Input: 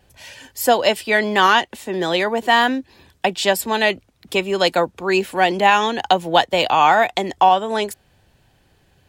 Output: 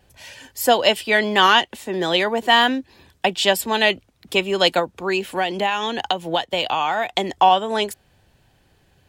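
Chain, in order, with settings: dynamic EQ 3100 Hz, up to +6 dB, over -34 dBFS, Q 3.1; 4.79–7.17 compressor 6:1, threshold -17 dBFS, peak gain reduction 9.5 dB; gain -1 dB

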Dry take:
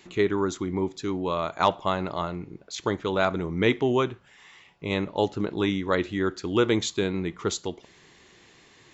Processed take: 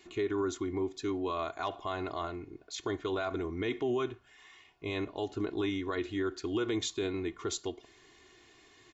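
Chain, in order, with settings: comb 2.8 ms, depth 72%; limiter -16.5 dBFS, peak gain reduction 9.5 dB; gain -7 dB

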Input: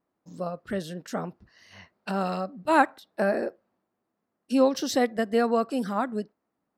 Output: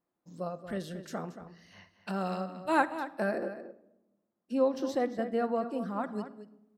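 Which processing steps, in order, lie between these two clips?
3.38–6.04 high shelf 2300 Hz -12 dB; outdoor echo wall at 39 m, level -11 dB; reverb RT60 0.95 s, pre-delay 6 ms, DRR 11 dB; gain -6 dB

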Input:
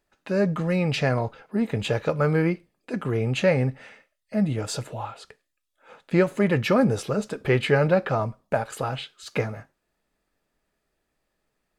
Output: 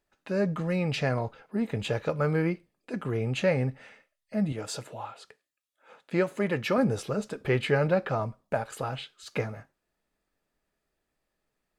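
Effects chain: 4.52–6.78 HPF 210 Hz 6 dB/oct; gain -4.5 dB

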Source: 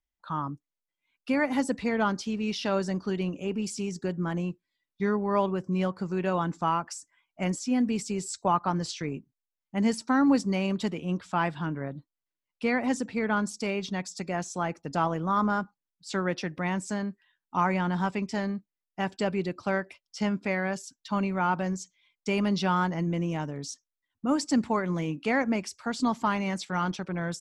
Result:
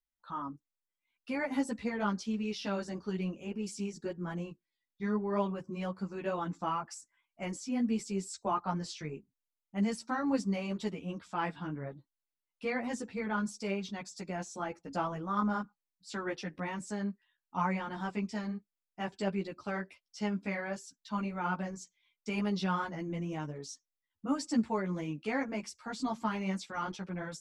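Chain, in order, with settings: ensemble effect; gain -4 dB

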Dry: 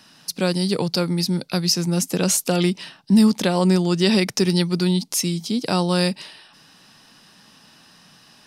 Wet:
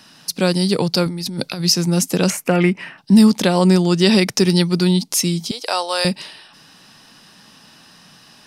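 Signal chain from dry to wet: 1.06–1.61 negative-ratio compressor -29 dBFS, ratio -1; 2.3–2.98 resonant high shelf 2900 Hz -9.5 dB, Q 3; 5.51–6.05 HPF 530 Hz 24 dB/oct; gain +4 dB

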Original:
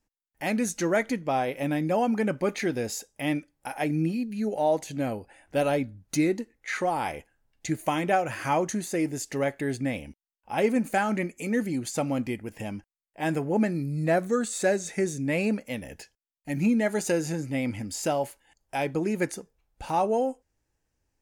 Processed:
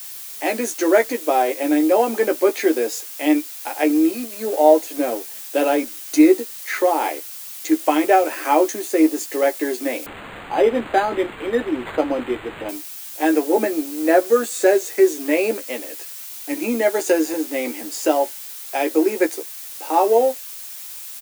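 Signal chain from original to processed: G.711 law mismatch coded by A; steep high-pass 300 Hz 48 dB/oct; low shelf 440 Hz +11 dB; added noise blue -41 dBFS; doubler 13 ms -5 dB; 10.06–12.69 decimation joined by straight lines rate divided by 8×; gain +5 dB

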